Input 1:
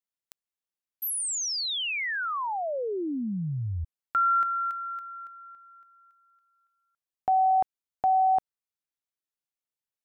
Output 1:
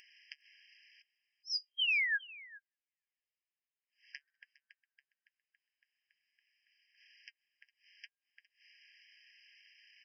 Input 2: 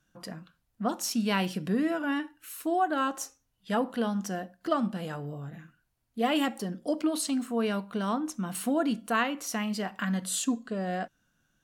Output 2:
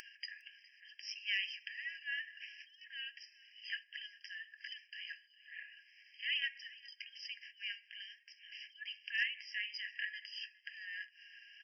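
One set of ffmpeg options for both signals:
-af "equalizer=f=220:t=o:w=2.4:g=-14.5,acompressor=mode=upward:threshold=-36dB:ratio=4:attack=7.7:release=124:knee=2.83:detection=peak,flanger=delay=4:depth=3.2:regen=-58:speed=1.1:shape=sinusoidal,aresample=11025,asoftclip=type=hard:threshold=-24.5dB,aresample=44100,aecho=1:1:409:0.0944,afftfilt=real='re*eq(mod(floor(b*sr/1024/1600),2),1)':imag='im*eq(mod(floor(b*sr/1024/1600),2),1)':win_size=1024:overlap=0.75,volume=4dB"

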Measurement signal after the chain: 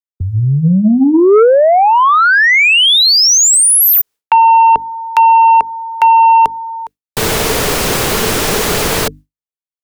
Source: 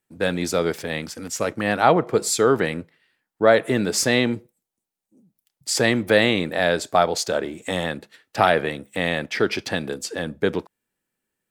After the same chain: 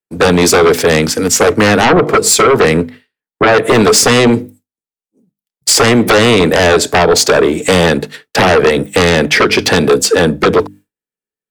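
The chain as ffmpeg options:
-filter_complex "[0:a]bandreject=f=50:t=h:w=6,bandreject=f=100:t=h:w=6,bandreject=f=150:t=h:w=6,bandreject=f=200:t=h:w=6,bandreject=f=250:t=h:w=6,bandreject=f=300:t=h:w=6,agate=range=-33dB:threshold=-45dB:ratio=3:detection=peak,equalizer=f=440:t=o:w=0.2:g=9.5,acrossover=split=130|440[a][b][c];[a]acompressor=threshold=-42dB:ratio=4[d];[b]acompressor=threshold=-24dB:ratio=4[e];[c]acompressor=threshold=-24dB:ratio=4[f];[d][e][f]amix=inputs=3:normalize=0,aeval=exprs='0.398*sin(PI/2*3.98*val(0)/0.398)':c=same,volume=4dB"

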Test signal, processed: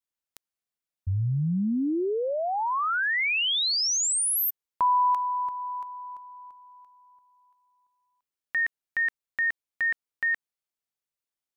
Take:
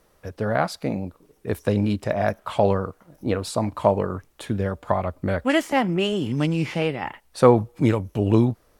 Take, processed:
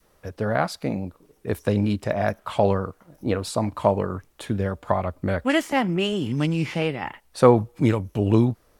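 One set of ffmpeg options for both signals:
-af "adynamicequalizer=threshold=0.02:dfrequency=590:dqfactor=1:tfrequency=590:tqfactor=1:attack=5:release=100:ratio=0.375:range=1.5:mode=cutabove:tftype=bell"

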